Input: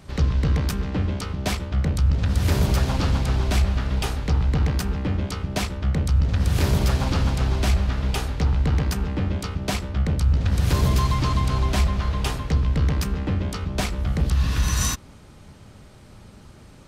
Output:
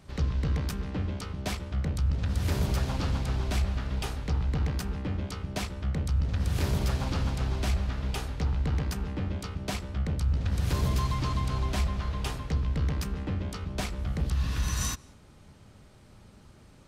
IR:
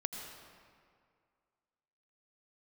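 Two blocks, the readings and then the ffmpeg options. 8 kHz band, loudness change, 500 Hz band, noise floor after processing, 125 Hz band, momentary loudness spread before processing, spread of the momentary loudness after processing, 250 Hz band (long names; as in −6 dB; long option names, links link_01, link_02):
−7.5 dB, −7.5 dB, −7.5 dB, −54 dBFS, −7.5 dB, 6 LU, 6 LU, −7.5 dB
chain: -filter_complex "[0:a]asplit=2[link_01][link_02];[1:a]atrim=start_sample=2205,afade=type=out:start_time=0.16:duration=0.01,atrim=end_sample=7497,asetrate=24255,aresample=44100[link_03];[link_02][link_03]afir=irnorm=-1:irlink=0,volume=-20dB[link_04];[link_01][link_04]amix=inputs=2:normalize=0,volume=-8.5dB"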